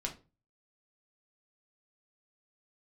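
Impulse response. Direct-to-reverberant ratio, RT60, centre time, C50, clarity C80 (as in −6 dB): 0.5 dB, 0.30 s, 12 ms, 12.5 dB, 19.5 dB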